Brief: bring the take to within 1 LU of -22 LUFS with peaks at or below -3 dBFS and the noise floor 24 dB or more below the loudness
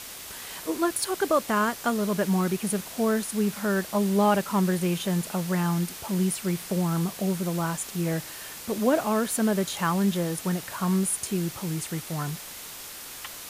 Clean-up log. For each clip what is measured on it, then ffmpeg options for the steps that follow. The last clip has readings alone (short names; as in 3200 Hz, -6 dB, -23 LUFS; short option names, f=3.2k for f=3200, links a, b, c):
noise floor -41 dBFS; noise floor target -51 dBFS; loudness -26.5 LUFS; peak -10.5 dBFS; loudness target -22.0 LUFS
-> -af "afftdn=nr=10:nf=-41"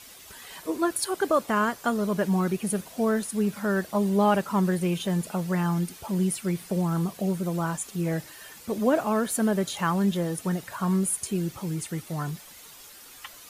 noise floor -48 dBFS; noise floor target -51 dBFS
-> -af "afftdn=nr=6:nf=-48"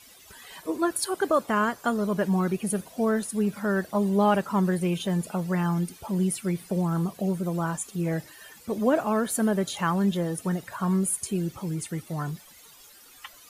noise floor -52 dBFS; loudness -27.0 LUFS; peak -11.0 dBFS; loudness target -22.0 LUFS
-> -af "volume=5dB"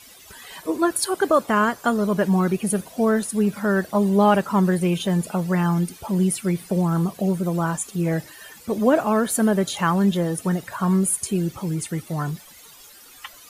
loudness -22.0 LUFS; peak -6.0 dBFS; noise floor -47 dBFS